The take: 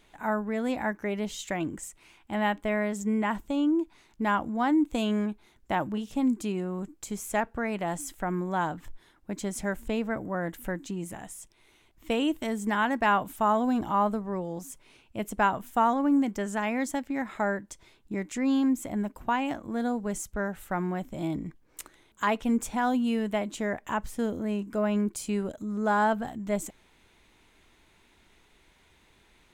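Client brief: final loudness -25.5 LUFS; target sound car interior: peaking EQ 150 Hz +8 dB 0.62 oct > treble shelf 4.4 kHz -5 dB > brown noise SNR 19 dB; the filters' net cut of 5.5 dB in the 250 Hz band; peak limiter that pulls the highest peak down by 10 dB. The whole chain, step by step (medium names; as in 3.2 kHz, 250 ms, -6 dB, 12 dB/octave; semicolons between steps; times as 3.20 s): peaking EQ 250 Hz -9 dB; peak limiter -21.5 dBFS; peaking EQ 150 Hz +8 dB 0.62 oct; treble shelf 4.4 kHz -5 dB; brown noise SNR 19 dB; trim +8.5 dB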